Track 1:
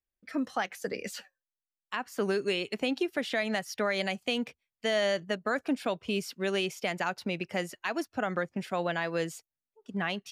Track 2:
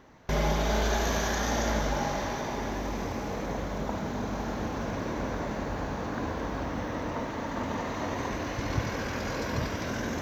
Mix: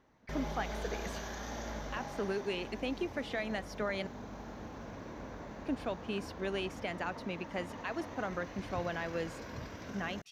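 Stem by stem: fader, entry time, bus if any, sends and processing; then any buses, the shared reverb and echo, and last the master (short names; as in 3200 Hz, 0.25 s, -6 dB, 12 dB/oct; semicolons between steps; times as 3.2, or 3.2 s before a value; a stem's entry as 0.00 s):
-6.0 dB, 0.00 s, muted 4.07–5.59, no send, high shelf 4500 Hz -7 dB
-13.0 dB, 0.00 s, no send, dry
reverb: off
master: high shelf 8800 Hz -3.5 dB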